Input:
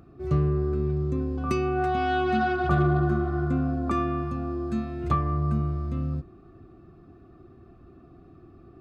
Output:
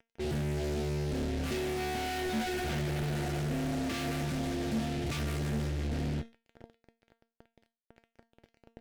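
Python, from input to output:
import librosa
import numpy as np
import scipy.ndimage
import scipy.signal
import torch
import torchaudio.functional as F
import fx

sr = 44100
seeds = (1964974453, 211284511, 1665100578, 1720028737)

y = fx.comb(x, sr, ms=7.0, depth=0.45, at=(3.02, 5.17))
y = fx.fuzz(y, sr, gain_db=47.0, gate_db=-42.0)
y = fx.peak_eq(y, sr, hz=1100.0, db=-15.0, octaves=0.57)
y = fx.comb_fb(y, sr, f0_hz=230.0, decay_s=0.29, harmonics='all', damping=0.0, mix_pct=70)
y = fx.doppler_dist(y, sr, depth_ms=0.18)
y = F.gain(torch.from_numpy(y), -8.5).numpy()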